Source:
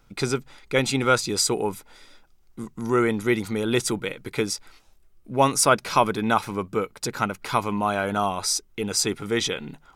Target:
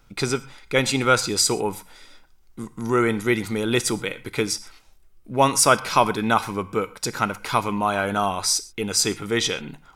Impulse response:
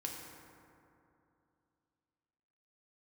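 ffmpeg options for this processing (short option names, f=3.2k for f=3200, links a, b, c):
-filter_complex "[0:a]asplit=2[a][b];[b]equalizer=f=310:t=o:w=2.1:g=-13.5[c];[1:a]atrim=start_sample=2205,atrim=end_sample=6174[d];[c][d]afir=irnorm=-1:irlink=0,volume=-4.5dB[e];[a][e]amix=inputs=2:normalize=0"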